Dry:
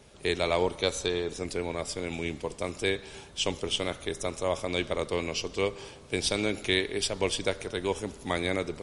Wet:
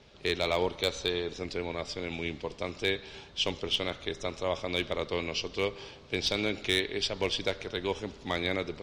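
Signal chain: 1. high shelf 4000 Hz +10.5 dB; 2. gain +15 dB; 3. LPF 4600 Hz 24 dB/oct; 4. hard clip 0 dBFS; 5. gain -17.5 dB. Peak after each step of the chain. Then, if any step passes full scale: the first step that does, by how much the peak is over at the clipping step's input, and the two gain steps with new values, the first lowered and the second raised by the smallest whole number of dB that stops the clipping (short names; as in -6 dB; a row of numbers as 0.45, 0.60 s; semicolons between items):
-6.5, +8.5, +6.5, 0.0, -17.5 dBFS; step 2, 6.5 dB; step 2 +8 dB, step 5 -10.5 dB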